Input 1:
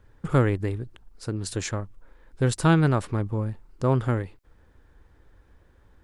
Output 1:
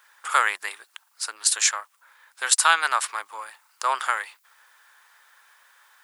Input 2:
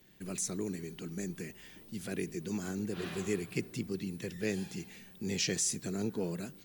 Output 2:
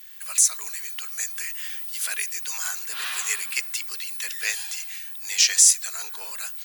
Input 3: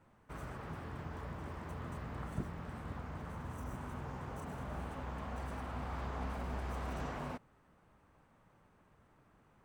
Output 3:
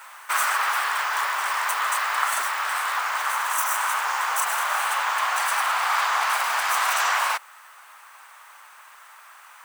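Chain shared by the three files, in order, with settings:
high-pass 1 kHz 24 dB/octave; treble shelf 6.6 kHz +10.5 dB; in parallel at +2 dB: gain riding 2 s; on the sum: normalise loudness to -23 LUFS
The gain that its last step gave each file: +3.5 dB, +3.5 dB, +20.0 dB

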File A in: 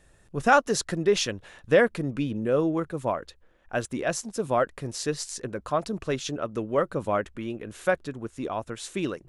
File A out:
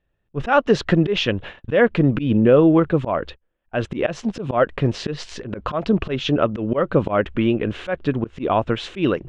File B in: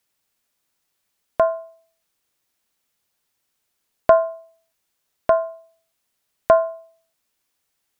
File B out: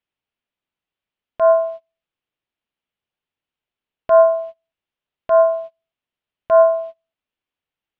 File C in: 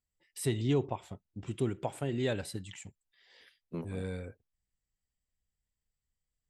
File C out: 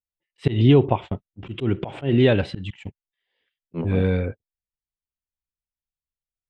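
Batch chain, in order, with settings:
gate -46 dBFS, range -29 dB; peaking EQ 3 kHz +10.5 dB 0.9 oct; compression 2:1, threshold -28 dBFS; slow attack 120 ms; tape spacing loss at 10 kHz 37 dB; peak normalisation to -3 dBFS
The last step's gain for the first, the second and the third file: +16.5 dB, +23.0 dB, +18.0 dB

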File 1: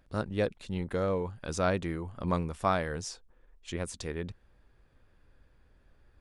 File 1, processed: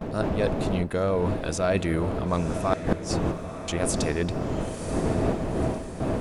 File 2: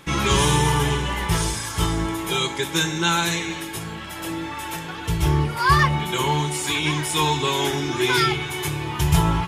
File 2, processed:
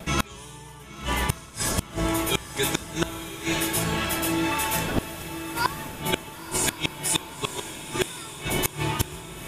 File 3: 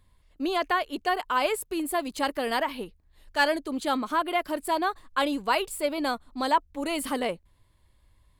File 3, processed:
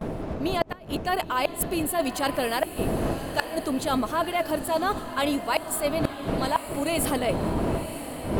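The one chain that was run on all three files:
wind noise 380 Hz -33 dBFS; gate with hold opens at -37 dBFS; small resonant body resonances 650/2600 Hz, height 10 dB, ringing for 95 ms; inverted gate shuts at -12 dBFS, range -37 dB; treble shelf 7.9 kHz +9 dB; reverse; compression 6:1, threshold -35 dBFS; reverse; echo that smears into a reverb 998 ms, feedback 50%, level -10.5 dB; normalise loudness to -27 LUFS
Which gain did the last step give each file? +13.0 dB, +12.0 dB, +11.5 dB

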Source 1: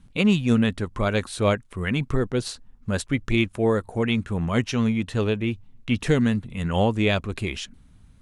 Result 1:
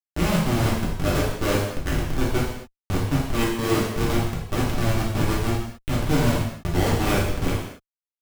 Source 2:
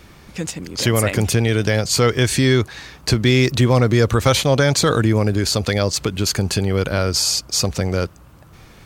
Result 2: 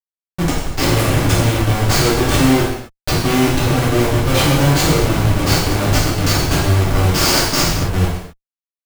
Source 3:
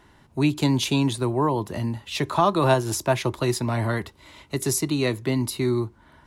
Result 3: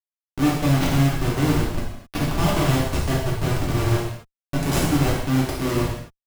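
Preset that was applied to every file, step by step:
in parallel at +1 dB: compression 12:1, threshold -31 dBFS; on the sum: Schmitt trigger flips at -17 dBFS; gated-style reverb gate 290 ms falling, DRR -7 dB; trim -4 dB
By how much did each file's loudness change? -0.5 LU, +2.5 LU, +1.5 LU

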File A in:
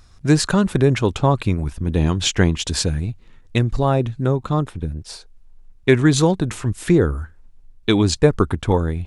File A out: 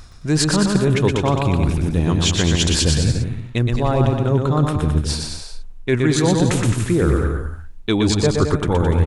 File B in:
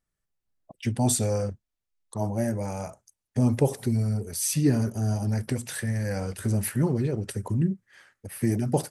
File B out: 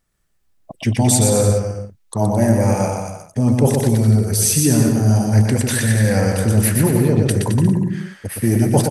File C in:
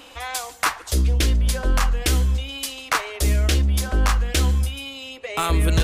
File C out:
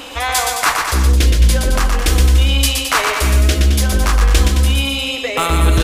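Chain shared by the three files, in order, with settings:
reverse; compression 6:1, threshold -25 dBFS; reverse; bouncing-ball echo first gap 120 ms, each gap 0.8×, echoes 5; peak normalisation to -1.5 dBFS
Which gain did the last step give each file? +9.5 dB, +12.5 dB, +12.5 dB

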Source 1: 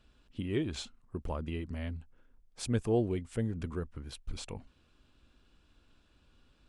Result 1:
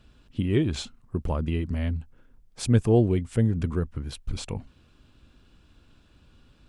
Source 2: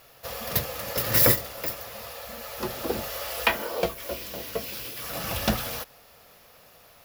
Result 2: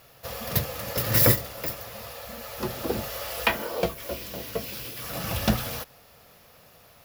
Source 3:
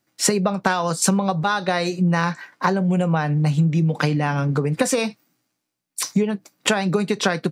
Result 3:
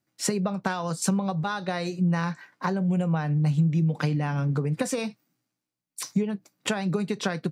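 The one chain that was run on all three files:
peaking EQ 120 Hz +6 dB 2.1 oct; normalise loudness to -27 LUFS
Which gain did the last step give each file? +6.5 dB, -1.0 dB, -9.0 dB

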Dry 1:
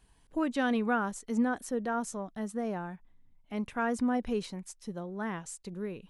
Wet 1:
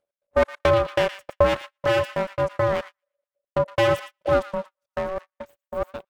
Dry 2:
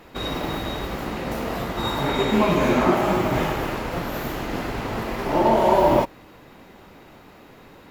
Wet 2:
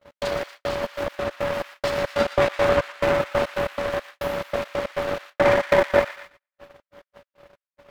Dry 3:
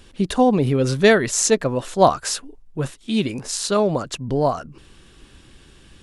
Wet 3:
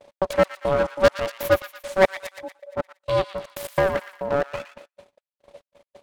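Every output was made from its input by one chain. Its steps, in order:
trance gate "x.xx..xx.x." 139 bpm -60 dB; dynamic bell 150 Hz, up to -4 dB, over -41 dBFS, Q 2.7; reverb removal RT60 0.59 s; in parallel at -1.5 dB: compression 6:1, threshold -28 dBFS; on the sum: treble shelf 3 kHz -10 dB; full-wave rectifier; upward compressor, threshold -42 dBFS; ring modulator 570 Hz; feedback echo behind a high-pass 117 ms, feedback 56%, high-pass 1.5 kHz, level -10 dB; gate -44 dBFS, range -39 dB; normalise loudness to -24 LUFS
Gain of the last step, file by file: +11.0 dB, +3.0 dB, +1.0 dB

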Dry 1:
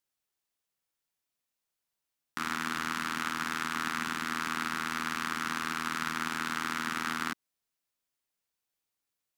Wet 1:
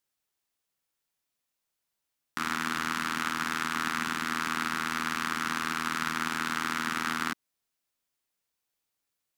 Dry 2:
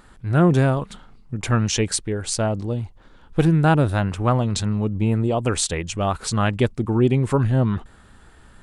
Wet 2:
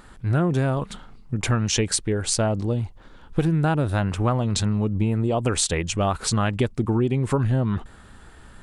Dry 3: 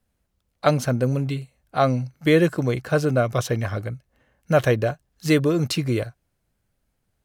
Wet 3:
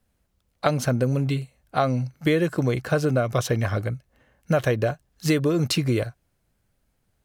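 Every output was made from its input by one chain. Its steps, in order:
compression 6:1, threshold -20 dBFS; trim +2.5 dB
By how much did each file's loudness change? +2.5 LU, -2.0 LU, -2.0 LU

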